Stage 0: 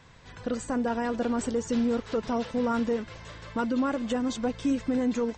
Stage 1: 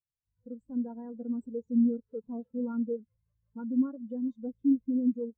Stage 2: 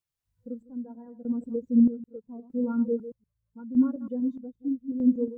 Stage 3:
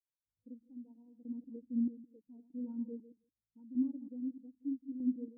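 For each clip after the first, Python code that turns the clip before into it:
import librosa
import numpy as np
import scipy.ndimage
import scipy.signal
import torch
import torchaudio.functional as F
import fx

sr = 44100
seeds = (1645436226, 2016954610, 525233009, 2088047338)

y1 = fx.low_shelf(x, sr, hz=220.0, db=4.0)
y1 = fx.spectral_expand(y1, sr, expansion=2.5)
y2 = fx.reverse_delay(y1, sr, ms=120, wet_db=-12.0)
y2 = fx.chopper(y2, sr, hz=0.8, depth_pct=65, duty_pct=50)
y2 = y2 * librosa.db_to_amplitude(5.0)
y3 = fx.formant_cascade(y2, sr, vowel='u')
y3 = y3 + 10.0 ** (-23.5 / 20.0) * np.pad(y3, (int(171 * sr / 1000.0), 0))[:len(y3)]
y3 = y3 * librosa.db_to_amplitude(-6.5)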